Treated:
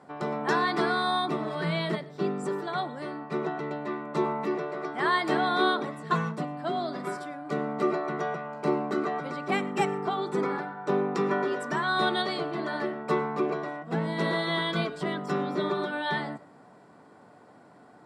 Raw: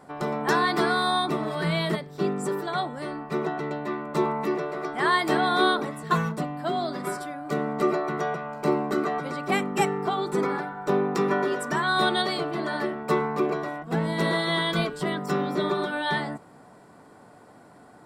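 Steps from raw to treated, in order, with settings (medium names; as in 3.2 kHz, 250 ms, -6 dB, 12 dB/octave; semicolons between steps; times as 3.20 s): high-pass 110 Hz; distance through air 59 m; reverberation RT60 0.30 s, pre-delay 70 ms, DRR 19.5 dB; trim -2.5 dB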